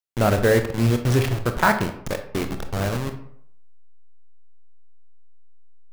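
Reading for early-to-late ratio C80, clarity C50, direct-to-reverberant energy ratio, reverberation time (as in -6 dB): 13.0 dB, 10.0 dB, 6.5 dB, 0.65 s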